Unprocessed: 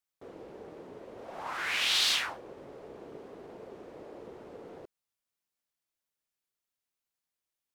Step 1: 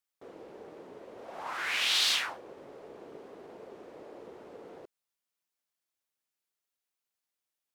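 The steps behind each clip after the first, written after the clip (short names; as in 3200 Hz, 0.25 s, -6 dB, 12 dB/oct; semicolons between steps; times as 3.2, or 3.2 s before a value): low shelf 150 Hz -10 dB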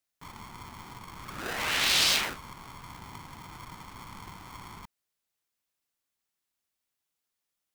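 polarity switched at an audio rate 550 Hz; gain +3 dB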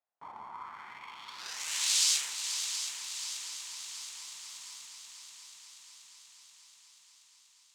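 band-pass sweep 780 Hz -> 7300 Hz, 0.43–1.66; multi-head echo 0.241 s, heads second and third, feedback 68%, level -9.5 dB; gain +6 dB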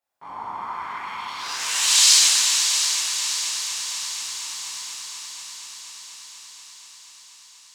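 plate-style reverb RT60 3.1 s, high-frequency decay 0.75×, DRR -9.5 dB; gain +4 dB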